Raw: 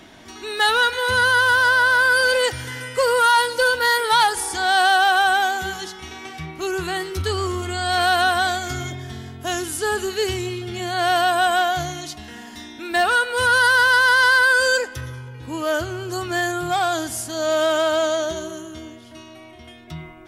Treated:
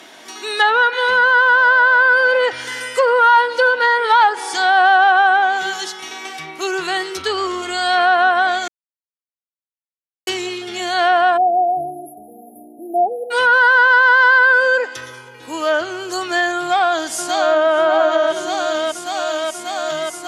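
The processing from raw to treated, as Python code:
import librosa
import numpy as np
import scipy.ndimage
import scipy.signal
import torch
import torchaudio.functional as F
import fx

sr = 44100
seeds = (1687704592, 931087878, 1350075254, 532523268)

y = fx.brickwall_bandstop(x, sr, low_hz=830.0, high_hz=10000.0, at=(11.36, 13.3), fade=0.02)
y = fx.echo_throw(y, sr, start_s=16.59, length_s=1.14, ms=590, feedback_pct=85, wet_db=-5.0)
y = fx.edit(y, sr, fx.silence(start_s=8.68, length_s=1.59), tone=tone)
y = fx.env_lowpass_down(y, sr, base_hz=1800.0, full_db=-15.0)
y = scipy.signal.sosfilt(scipy.signal.butter(2, 400.0, 'highpass', fs=sr, output='sos'), y)
y = fx.high_shelf(y, sr, hz=5100.0, db=4.5)
y = F.gain(torch.from_numpy(y), 5.5).numpy()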